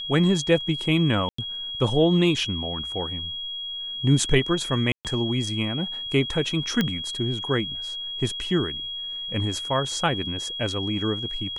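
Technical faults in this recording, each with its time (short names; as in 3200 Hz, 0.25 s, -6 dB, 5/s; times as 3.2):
tone 3300 Hz -30 dBFS
1.29–1.38 gap 94 ms
4.92–5.05 gap 0.128 s
6.81 pop -9 dBFS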